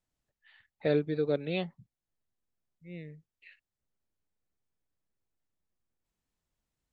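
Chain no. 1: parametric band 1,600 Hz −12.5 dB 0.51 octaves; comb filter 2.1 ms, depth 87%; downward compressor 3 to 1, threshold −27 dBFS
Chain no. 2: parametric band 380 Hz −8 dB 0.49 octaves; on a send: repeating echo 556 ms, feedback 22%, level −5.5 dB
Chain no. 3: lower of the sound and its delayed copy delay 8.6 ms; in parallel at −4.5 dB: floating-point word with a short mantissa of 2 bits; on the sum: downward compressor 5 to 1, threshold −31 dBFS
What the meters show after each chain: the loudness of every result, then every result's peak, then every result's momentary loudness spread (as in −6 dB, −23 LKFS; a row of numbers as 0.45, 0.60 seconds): −33.5, −35.0, −38.0 LKFS; −18.5, −18.0, −20.0 dBFS; 16, 20, 20 LU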